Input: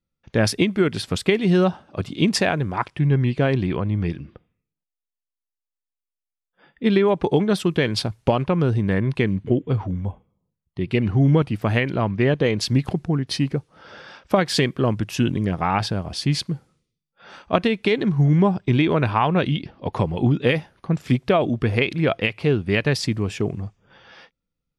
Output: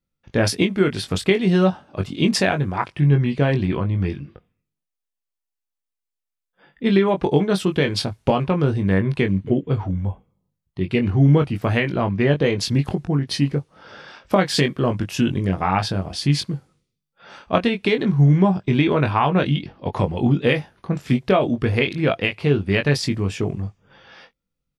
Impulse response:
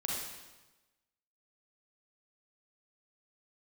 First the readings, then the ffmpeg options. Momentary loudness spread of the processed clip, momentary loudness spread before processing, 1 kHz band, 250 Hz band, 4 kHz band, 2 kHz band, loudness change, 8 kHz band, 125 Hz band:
8 LU, 8 LU, +1.0 dB, +1.0 dB, +1.0 dB, +1.0 dB, +1.0 dB, +1.0 dB, +1.5 dB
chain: -filter_complex "[0:a]asplit=2[a][b];[b]adelay=21,volume=-6dB[c];[a][c]amix=inputs=2:normalize=0"

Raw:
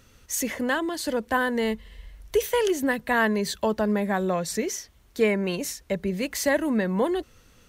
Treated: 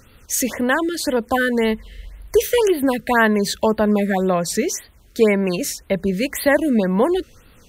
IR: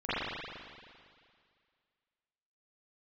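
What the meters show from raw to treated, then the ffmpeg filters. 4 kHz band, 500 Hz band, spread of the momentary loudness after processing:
+5.5 dB, +7.0 dB, 7 LU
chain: -af "afftfilt=real='re*(1-between(b*sr/1024,820*pow(6900/820,0.5+0.5*sin(2*PI*1.9*pts/sr))/1.41,820*pow(6900/820,0.5+0.5*sin(2*PI*1.9*pts/sr))*1.41))':imag='im*(1-between(b*sr/1024,820*pow(6900/820,0.5+0.5*sin(2*PI*1.9*pts/sr))/1.41,820*pow(6900/820,0.5+0.5*sin(2*PI*1.9*pts/sr))*1.41))':win_size=1024:overlap=0.75,volume=7dB"

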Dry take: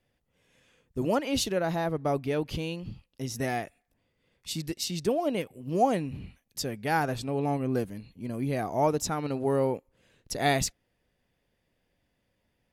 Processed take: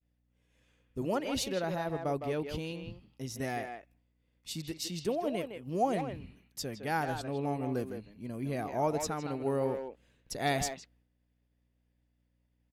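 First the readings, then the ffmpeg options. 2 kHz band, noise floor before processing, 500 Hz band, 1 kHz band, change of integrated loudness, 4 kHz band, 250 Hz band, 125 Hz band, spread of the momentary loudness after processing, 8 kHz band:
-5.0 dB, -76 dBFS, -4.5 dB, -5.0 dB, -5.0 dB, -5.0 dB, -5.0 dB, -5.5 dB, 12 LU, -5.5 dB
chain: -filter_complex "[0:a]aeval=exprs='val(0)+0.000794*(sin(2*PI*60*n/s)+sin(2*PI*2*60*n/s)/2+sin(2*PI*3*60*n/s)/3+sin(2*PI*4*60*n/s)/4+sin(2*PI*5*60*n/s)/5)':c=same,asplit=2[a][b];[b]adelay=160,highpass=300,lowpass=3.4k,asoftclip=type=hard:threshold=-21dB,volume=-6dB[c];[a][c]amix=inputs=2:normalize=0,agate=range=-33dB:threshold=-57dB:ratio=3:detection=peak,volume=-5.5dB"

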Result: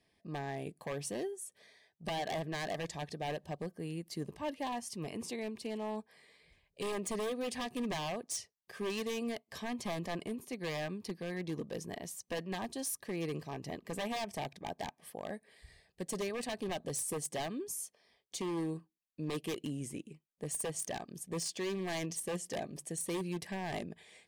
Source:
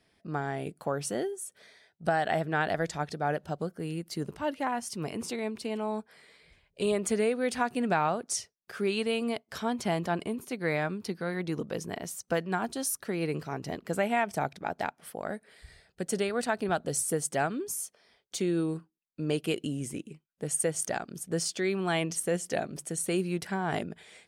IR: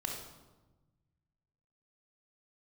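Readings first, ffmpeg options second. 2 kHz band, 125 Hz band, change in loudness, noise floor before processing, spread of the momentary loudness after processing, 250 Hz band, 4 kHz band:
-9.5 dB, -7.0 dB, -7.5 dB, -75 dBFS, 7 LU, -7.0 dB, -4.0 dB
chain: -af "aeval=exprs='0.0562*(abs(mod(val(0)/0.0562+3,4)-2)-1)':c=same,asuperstop=centerf=1400:order=8:qfactor=4.7,volume=-5.5dB"

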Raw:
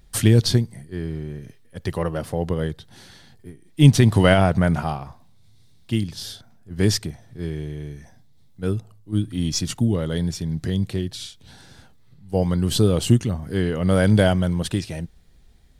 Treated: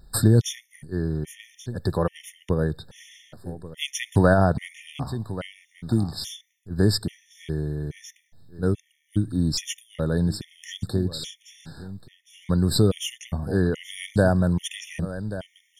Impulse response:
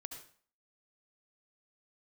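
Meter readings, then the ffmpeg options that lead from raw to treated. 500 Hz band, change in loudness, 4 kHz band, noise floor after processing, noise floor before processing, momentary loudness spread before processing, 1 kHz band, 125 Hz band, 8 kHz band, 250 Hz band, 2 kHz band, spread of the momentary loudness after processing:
-2.5 dB, -4.0 dB, -3.0 dB, -68 dBFS, -51 dBFS, 18 LU, -2.5 dB, -4.0 dB, -2.5 dB, -3.5 dB, -3.5 dB, 20 LU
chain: -af "aecho=1:1:1133:0.126,acompressor=threshold=-23dB:ratio=1.5,afftfilt=real='re*gt(sin(2*PI*1.2*pts/sr)*(1-2*mod(floor(b*sr/1024/1800),2)),0)':imag='im*gt(sin(2*PI*1.2*pts/sr)*(1-2*mod(floor(b*sr/1024/1800),2)),0)':win_size=1024:overlap=0.75,volume=3dB"

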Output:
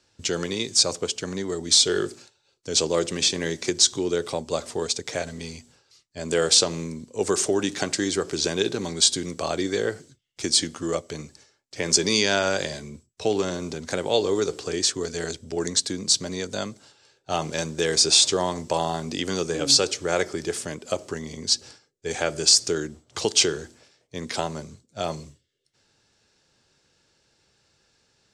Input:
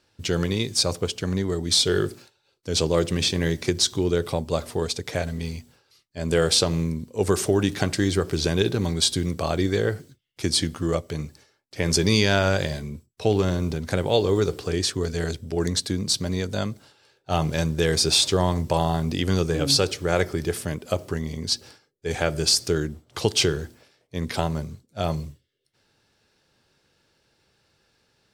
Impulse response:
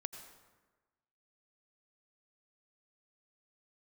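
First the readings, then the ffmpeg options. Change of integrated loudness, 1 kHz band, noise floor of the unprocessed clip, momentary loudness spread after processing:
+0.5 dB, -1.0 dB, -69 dBFS, 15 LU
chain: -filter_complex "[0:a]acrossover=split=200[a][b];[a]acompressor=threshold=-42dB:ratio=10[c];[c][b]amix=inputs=2:normalize=0,lowpass=f=7.3k:t=q:w=2.5,volume=-1dB"

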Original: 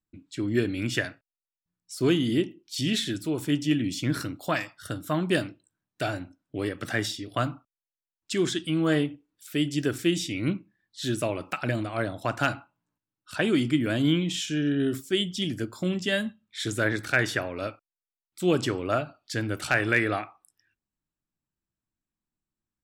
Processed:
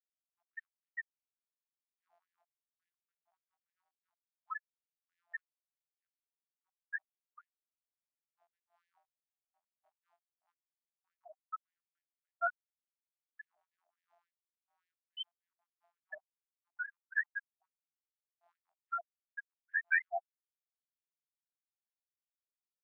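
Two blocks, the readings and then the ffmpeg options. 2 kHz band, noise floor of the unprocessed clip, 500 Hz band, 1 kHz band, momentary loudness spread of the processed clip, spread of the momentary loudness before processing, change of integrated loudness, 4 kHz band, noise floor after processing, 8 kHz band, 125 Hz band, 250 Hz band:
-10.0 dB, under -85 dBFS, -24.0 dB, -12.0 dB, 19 LU, 10 LU, -11.5 dB, -22.5 dB, under -85 dBFS, under -40 dB, under -40 dB, under -40 dB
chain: -af "afftfilt=real='hypot(re,im)*cos(PI*b)':imag='0':win_size=2048:overlap=0.75,afftfilt=real='re*gte(hypot(re,im),0.224)':imag='im*gte(hypot(re,im),0.224)':win_size=1024:overlap=0.75,afftfilt=real='re*gte(b*sr/1024,620*pow(1700/620,0.5+0.5*sin(2*PI*3.5*pts/sr)))':imag='im*gte(b*sr/1024,620*pow(1700/620,0.5+0.5*sin(2*PI*3.5*pts/sr)))':win_size=1024:overlap=0.75,volume=1.5dB"

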